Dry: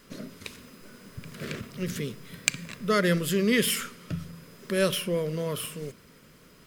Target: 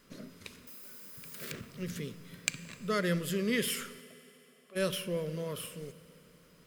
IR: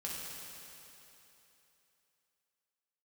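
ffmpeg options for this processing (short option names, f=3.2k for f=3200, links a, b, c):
-filter_complex "[0:a]asettb=1/sr,asplit=3[a][b][c];[a]atrim=end=0.674[d];[b]atrim=start=0.67:end=1.52,asetpts=PTS-STARTPTS,afade=t=in:d=0.004:c=qsin,afade=t=out:st=0.846:d=0.004:c=qsin,aemphasis=mode=production:type=bsi[e];[c]atrim=start=1.516[f];[d][e]acrossfade=d=0.004:c1=hsin:c2=qsin[g];[g][f]acrossfade=d=0.004:c1=qsin:c2=hsin,asplit=3[h][i][j];[h]afade=t=out:st=4:d=0.02[k];[i]asplit=3[l][m][n];[l]bandpass=f=730:t=q:w=8,volume=0dB[o];[m]bandpass=f=1.09k:t=q:w=8,volume=-6dB[p];[n]bandpass=f=2.44k:t=q:w=8,volume=-9dB[q];[o][p][q]amix=inputs=3:normalize=0,afade=t=in:st=4:d=0.02,afade=t=out:st=4.75:d=0.02[r];[j]afade=t=in:st=4.75:d=0.02[s];[k][r][s]amix=inputs=3:normalize=0,asplit=2[t][u];[1:a]atrim=start_sample=2205[v];[u][v]afir=irnorm=-1:irlink=0,volume=-15.5dB[w];[t][w]amix=inputs=2:normalize=0,volume=-8dB"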